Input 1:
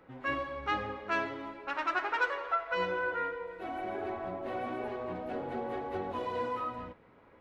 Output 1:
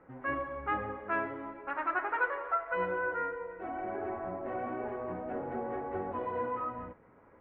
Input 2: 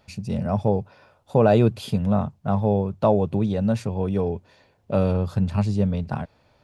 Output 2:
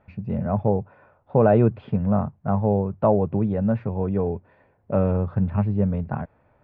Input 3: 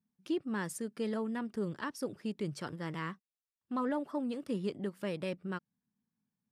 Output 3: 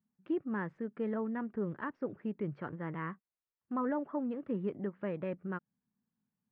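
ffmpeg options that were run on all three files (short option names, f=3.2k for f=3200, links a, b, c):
-af "lowpass=f=2k:w=0.5412,lowpass=f=2k:w=1.3066"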